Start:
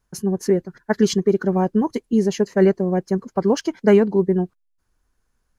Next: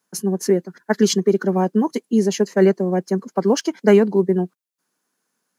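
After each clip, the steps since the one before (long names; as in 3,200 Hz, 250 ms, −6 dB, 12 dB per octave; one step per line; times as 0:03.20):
Butterworth high-pass 170 Hz
high-shelf EQ 4,500 Hz +6.5 dB
level +1 dB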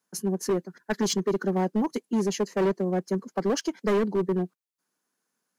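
hard clipping −14 dBFS, distortion −9 dB
level −6 dB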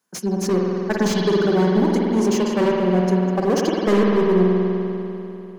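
dynamic equaliser 6,300 Hz, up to +6 dB, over −48 dBFS, Q 0.96
spring reverb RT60 3.1 s, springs 49 ms, chirp 35 ms, DRR −2 dB
slew-rate limiting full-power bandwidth 140 Hz
level +4 dB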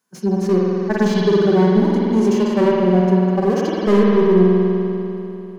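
harmonic and percussive parts rebalanced percussive −15 dB
level +4 dB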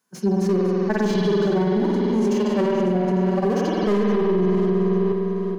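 feedback delay that plays each chunk backwards 427 ms, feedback 43%, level −11 dB
brickwall limiter −13 dBFS, peak gain reduction 10.5 dB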